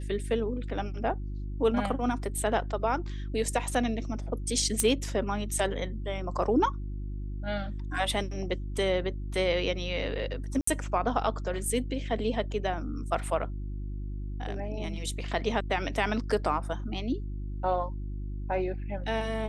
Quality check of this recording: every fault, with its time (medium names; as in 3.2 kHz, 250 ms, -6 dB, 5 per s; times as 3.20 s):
hum 50 Hz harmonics 7 -35 dBFS
4.80 s: pop -10 dBFS
10.61–10.67 s: dropout 64 ms